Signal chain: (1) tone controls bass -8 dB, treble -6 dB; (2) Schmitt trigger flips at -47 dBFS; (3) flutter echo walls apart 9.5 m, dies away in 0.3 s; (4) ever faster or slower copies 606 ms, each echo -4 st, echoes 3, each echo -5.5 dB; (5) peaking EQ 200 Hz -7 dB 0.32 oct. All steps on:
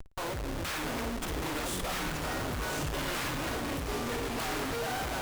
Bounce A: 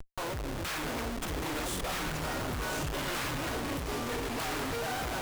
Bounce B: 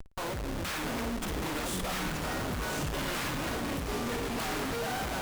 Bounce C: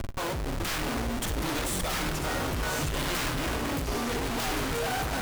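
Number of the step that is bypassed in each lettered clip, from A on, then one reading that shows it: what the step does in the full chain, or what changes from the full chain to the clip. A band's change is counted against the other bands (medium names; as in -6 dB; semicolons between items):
3, crest factor change -1.5 dB; 5, 250 Hz band +1.5 dB; 1, loudness change +3.5 LU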